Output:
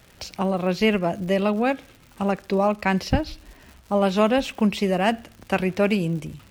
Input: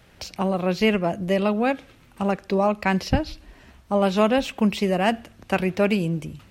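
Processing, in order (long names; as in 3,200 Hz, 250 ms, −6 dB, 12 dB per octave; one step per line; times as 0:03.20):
surface crackle 190 per second −38 dBFS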